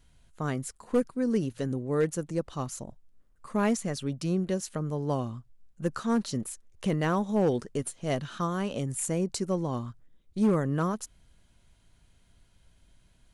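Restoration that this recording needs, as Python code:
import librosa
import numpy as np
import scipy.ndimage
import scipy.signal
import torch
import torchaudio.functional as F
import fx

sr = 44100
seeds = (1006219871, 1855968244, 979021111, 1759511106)

y = fx.fix_declip(x, sr, threshold_db=-18.0)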